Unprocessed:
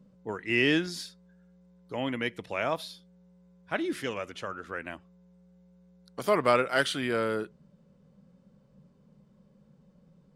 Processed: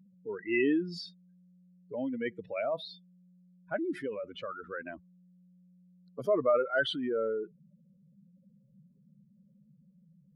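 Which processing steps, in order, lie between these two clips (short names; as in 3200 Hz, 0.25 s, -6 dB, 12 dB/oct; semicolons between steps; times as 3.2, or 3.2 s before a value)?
spectral contrast raised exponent 2.5; gain -2 dB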